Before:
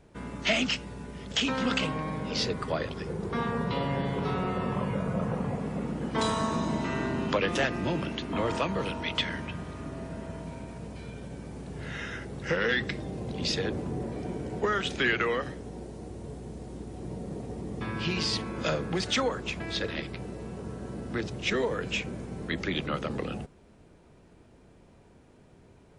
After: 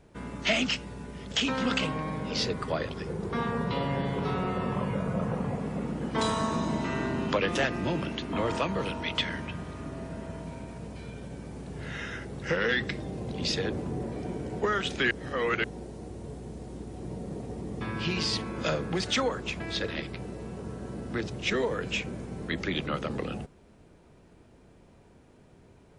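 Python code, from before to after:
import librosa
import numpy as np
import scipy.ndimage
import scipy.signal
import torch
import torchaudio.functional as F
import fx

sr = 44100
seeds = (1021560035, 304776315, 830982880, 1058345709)

y = fx.edit(x, sr, fx.reverse_span(start_s=15.11, length_s=0.53), tone=tone)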